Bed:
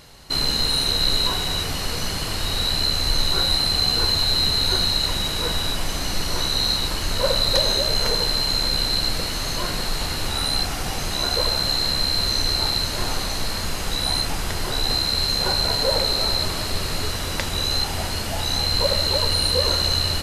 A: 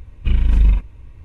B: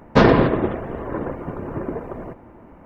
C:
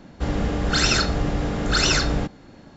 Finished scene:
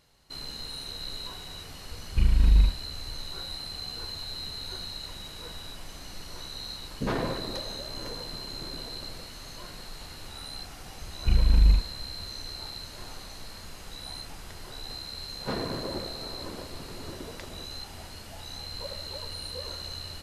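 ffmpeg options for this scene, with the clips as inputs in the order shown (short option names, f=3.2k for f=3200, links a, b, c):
-filter_complex "[1:a]asplit=2[a][b];[2:a]asplit=2[c][d];[0:a]volume=-17.5dB[e];[c]acrossover=split=420[f][g];[g]adelay=60[h];[f][h]amix=inputs=2:normalize=0[i];[d]alimiter=limit=-8dB:level=0:latency=1:release=366[j];[a]atrim=end=1.24,asetpts=PTS-STARTPTS,volume=-5.5dB,afade=t=in:d=0.004:c=hsin,afade=t=out:st=1.236:d=0.004:c=hsin,adelay=1910[k];[i]atrim=end=2.85,asetpts=PTS-STARTPTS,volume=-15.5dB,afade=t=in:d=0.004:c=hsin,afade=t=out:st=2.846:d=0.004:c=hsin,adelay=6850[l];[b]atrim=end=1.24,asetpts=PTS-STARTPTS,volume=-5.5dB,afade=t=in:d=0.004:c=hsin,afade=t=out:st=1.236:d=0.004:c=hsin,adelay=11010[m];[j]atrim=end=2.85,asetpts=PTS-STARTPTS,volume=-14.5dB,afade=t=in:d=0.004:c=hsin,afade=t=out:st=2.846:d=0.004:c=hsin,adelay=15320[n];[e][k][l][m][n]amix=inputs=5:normalize=0"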